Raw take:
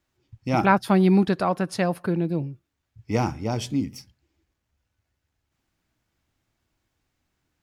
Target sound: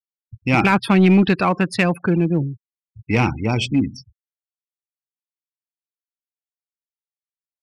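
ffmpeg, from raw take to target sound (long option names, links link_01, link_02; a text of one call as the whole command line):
ffmpeg -i in.wav -filter_complex "[0:a]afftfilt=real='re*gte(hypot(re,im),0.0126)':imag='im*gte(hypot(re,im),0.0126)':win_size=1024:overlap=0.75,equalizer=frequency=630:width_type=o:width=0.67:gain=-6,equalizer=frequency=2500:width_type=o:width=0.67:gain=12,equalizer=frequency=6300:width_type=o:width=0.67:gain=-7,aeval=exprs='0.75*(cos(1*acos(clip(val(0)/0.75,-1,1)))-cos(1*PI/2))+0.0237*(cos(5*acos(clip(val(0)/0.75,-1,1)))-cos(5*PI/2))':channel_layout=same,asplit=2[link_01][link_02];[link_02]asoftclip=type=hard:threshold=-19dB,volume=-5.5dB[link_03];[link_01][link_03]amix=inputs=2:normalize=0,alimiter=level_in=8dB:limit=-1dB:release=50:level=0:latency=1,volume=-5.5dB" out.wav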